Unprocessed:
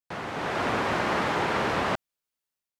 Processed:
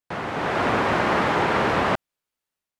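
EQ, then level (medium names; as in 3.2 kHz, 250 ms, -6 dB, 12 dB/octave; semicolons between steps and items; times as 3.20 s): peaking EQ 5.5 kHz -3.5 dB 1.8 oct; treble shelf 12 kHz -9 dB; +5.5 dB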